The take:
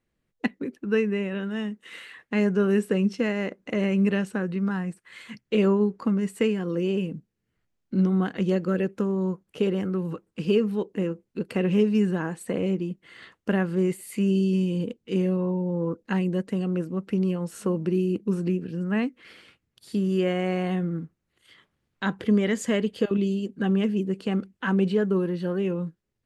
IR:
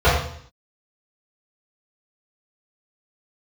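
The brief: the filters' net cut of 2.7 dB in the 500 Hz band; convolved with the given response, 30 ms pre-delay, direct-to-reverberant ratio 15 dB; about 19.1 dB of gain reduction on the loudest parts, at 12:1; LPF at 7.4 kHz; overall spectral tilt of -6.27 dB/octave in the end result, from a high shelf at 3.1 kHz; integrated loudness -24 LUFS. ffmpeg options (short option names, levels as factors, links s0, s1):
-filter_complex "[0:a]lowpass=7400,equalizer=f=500:t=o:g=-3.5,highshelf=f=3100:g=-8.5,acompressor=threshold=0.0126:ratio=12,asplit=2[s0][s1];[1:a]atrim=start_sample=2205,adelay=30[s2];[s1][s2]afir=irnorm=-1:irlink=0,volume=0.0106[s3];[s0][s3]amix=inputs=2:normalize=0,volume=8.41"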